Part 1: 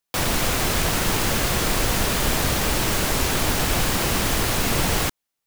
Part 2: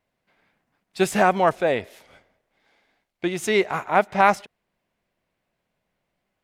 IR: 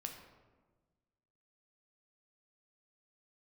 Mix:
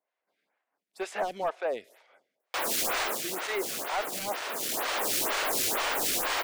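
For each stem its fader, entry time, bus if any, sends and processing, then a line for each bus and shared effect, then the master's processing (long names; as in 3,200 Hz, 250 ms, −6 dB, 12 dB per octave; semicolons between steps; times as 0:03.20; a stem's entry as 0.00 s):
−4.5 dB, 2.40 s, no send, sine wavefolder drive 7 dB, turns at −9.5 dBFS; automatic ducking −11 dB, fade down 0.20 s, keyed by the second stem
−6.0 dB, 0.00 s, no send, no processing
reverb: not used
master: high-pass filter 420 Hz 12 dB per octave; gain into a clipping stage and back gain 23.5 dB; phaser with staggered stages 2.1 Hz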